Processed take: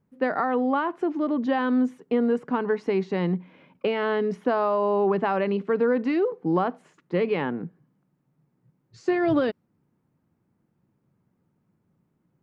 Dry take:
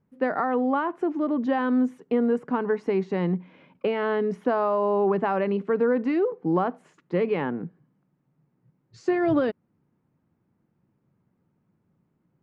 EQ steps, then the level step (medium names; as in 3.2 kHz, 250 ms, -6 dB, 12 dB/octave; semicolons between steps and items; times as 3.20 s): dynamic bell 4.1 kHz, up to +6 dB, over -50 dBFS, Q 0.86; 0.0 dB